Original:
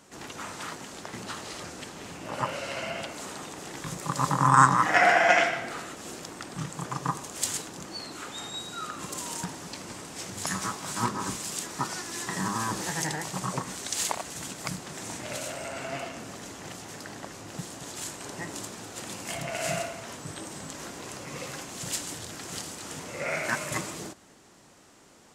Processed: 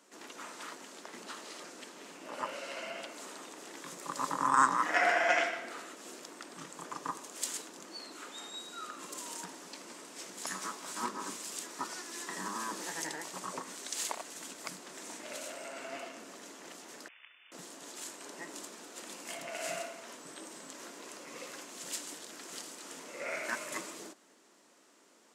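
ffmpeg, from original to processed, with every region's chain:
-filter_complex "[0:a]asettb=1/sr,asplit=3[s0][s1][s2];[s0]atrim=end=17.084[s3];[s1]atrim=start=17.08:end=17.52,asetpts=PTS-STARTPTS,afade=t=in:d=0.004:c=qsin,afade=t=out:st=0.436:d=0.004:c=qsin,aeval=exprs='abs(val(0))':c=same,acrossover=split=500 2300:gain=0.1 1 0.0891[s4][s5][s6];[s4][s5][s6]amix=inputs=3:normalize=0,lowpass=f=3000:t=q:w=0.5098,lowpass=f=3000:t=q:w=0.6013,lowpass=f=3000:t=q:w=0.9,lowpass=f=3000:t=q:w=2.563,afreqshift=-3500[s7];[s2]atrim=start=17.516[s8];[s3][s7]acrossfade=d=0.004:c1=hsin:c2=qsin[s9];[s9][s8]acrossfade=d=0.004:c1=qsin:c2=hsin,highpass=f=240:w=0.5412,highpass=f=240:w=1.3066,bandreject=f=780:w=12,volume=0.447"

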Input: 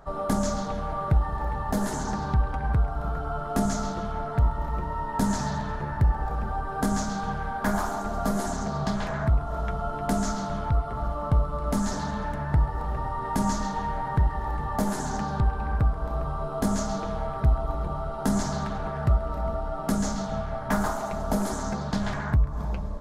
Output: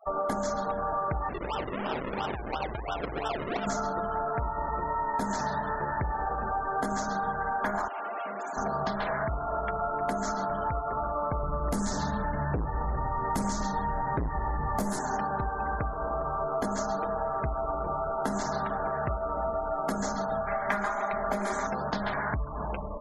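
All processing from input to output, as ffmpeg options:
-filter_complex "[0:a]asettb=1/sr,asplit=3[s0][s1][s2];[s0]atrim=end=1.294[s3];[s1]atrim=start=1.29:end=3.67,asetpts=PTS-STARTPTS,afade=t=in:d=0.004:c=qsin,afade=t=out:st=2.376:d=0.004:c=qsin,lowshelf=f=140:g=-3,acompressor=threshold=0.0447:ratio=10:attack=3.2:release=140:knee=1:detection=peak,acrusher=samples=39:mix=1:aa=0.000001:lfo=1:lforange=39:lforate=2.9[s4];[s2]atrim=start=3.666[s5];[s3][s4]acrossfade=d=0.004:c1=hsin:c2=qsin[s6];[s6][s5]acrossfade=d=0.004:c1=qsin:c2=hsin,asettb=1/sr,asplit=3[s7][s8][s9];[s7]atrim=end=7.884[s10];[s8]atrim=start=7.88:end=8.57,asetpts=PTS-STARTPTS,afade=t=in:d=0.004:c=qsin,afade=t=out:st=0.686:d=0.004:c=qsin,highpass=f=580:p=1,asoftclip=type=hard:threshold=0.0133[s11];[s9]atrim=start=8.566[s12];[s10][s11]acrossfade=d=0.004:c1=hsin:c2=qsin[s13];[s13][s12]acrossfade=d=0.004:c1=qsin:c2=hsin,asettb=1/sr,asplit=3[s14][s15][s16];[s14]atrim=end=11.434[s17];[s15]atrim=start=11.43:end=14.99,asetpts=PTS-STARTPTS,afade=t=in:d=0.004:c=qsin,afade=t=out:st=3.556:d=0.004:c=qsin,bass=f=250:g=12,treble=f=4000:g=8,volume=3.98,asoftclip=hard,volume=0.251[s18];[s16]atrim=start=14.986[s19];[s17][s18]acrossfade=d=0.004:c1=hsin:c2=qsin[s20];[s20][s19]acrossfade=d=0.004:c1=qsin:c2=hsin,asettb=1/sr,asplit=3[s21][s22][s23];[s21]atrim=end=20.474[s24];[s22]atrim=start=20.47:end=21.67,asetpts=PTS-STARTPTS,afade=t=in:d=0.004:c=qsin,afade=t=out:st=1.196:d=0.004:c=qsin,equalizer=f=2100:w=1.3:g=10,bandreject=f=2800:w=8.3,aecho=1:1:5:0.51,atrim=end_sample=52920[s25];[s23]atrim=start=21.666[s26];[s24][s25]acrossfade=d=0.004:c1=hsin:c2=qsin[s27];[s27][s26]acrossfade=d=0.004:c1=qsin:c2=hsin,bass=f=250:g=-13,treble=f=4000:g=-5,afftfilt=real='re*gte(hypot(re,im),0.00891)':imag='im*gte(hypot(re,im),0.00891)':win_size=1024:overlap=0.75,acompressor=threshold=0.0251:ratio=6,volume=1.88"

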